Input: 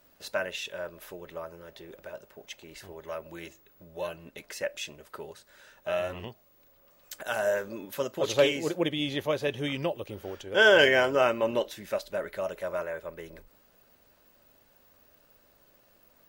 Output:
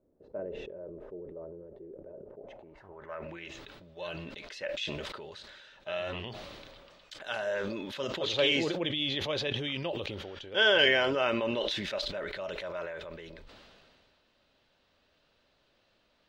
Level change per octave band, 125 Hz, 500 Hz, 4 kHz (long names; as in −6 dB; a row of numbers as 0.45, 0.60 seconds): −1.5, −5.0, +2.5 decibels